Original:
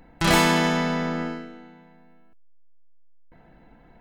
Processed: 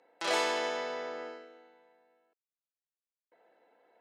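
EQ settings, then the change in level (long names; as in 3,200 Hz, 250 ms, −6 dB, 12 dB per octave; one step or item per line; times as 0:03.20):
four-pole ladder high-pass 410 Hz, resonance 50%
low-pass filter 6,200 Hz 12 dB per octave
high-shelf EQ 3,900 Hz +8 dB
−3.5 dB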